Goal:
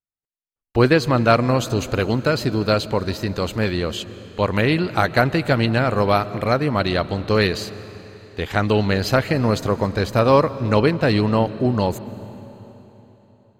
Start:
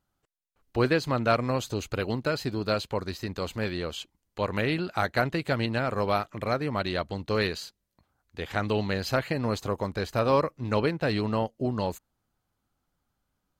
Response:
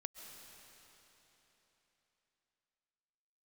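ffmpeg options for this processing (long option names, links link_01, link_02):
-filter_complex "[0:a]agate=range=-33dB:threshold=-49dB:ratio=3:detection=peak,asplit=2[link_01][link_02];[1:a]atrim=start_sample=2205,lowshelf=frequency=400:gain=8[link_03];[link_02][link_03]afir=irnorm=-1:irlink=0,volume=-5.5dB[link_04];[link_01][link_04]amix=inputs=2:normalize=0,volume=5.5dB"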